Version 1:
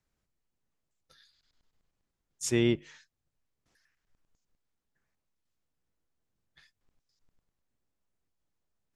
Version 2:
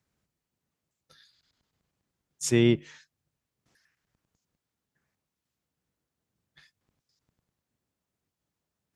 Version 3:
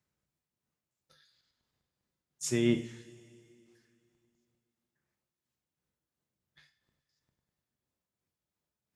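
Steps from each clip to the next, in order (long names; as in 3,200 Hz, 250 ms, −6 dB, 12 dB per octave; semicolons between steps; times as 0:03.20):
high-pass filter 66 Hz; parametric band 150 Hz +3.5 dB 1.6 octaves; level +3 dB
amplitude tremolo 2.9 Hz, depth 36%; coupled-rooms reverb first 0.4 s, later 2.7 s, from −18 dB, DRR 4.5 dB; level −5 dB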